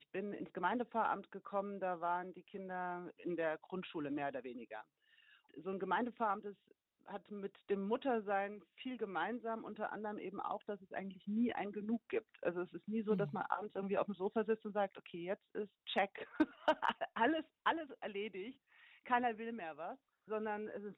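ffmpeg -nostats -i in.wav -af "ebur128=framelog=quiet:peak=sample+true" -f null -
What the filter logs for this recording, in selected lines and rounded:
Integrated loudness:
  I:         -40.7 LUFS
  Threshold: -51.1 LUFS
Loudness range:
  LRA:         4.5 LU
  Threshold: -61.1 LUFS
  LRA low:   -43.4 LUFS
  LRA high:  -38.9 LUFS
Sample peak:
  Peak:      -19.4 dBFS
True peak:
  Peak:      -19.3 dBFS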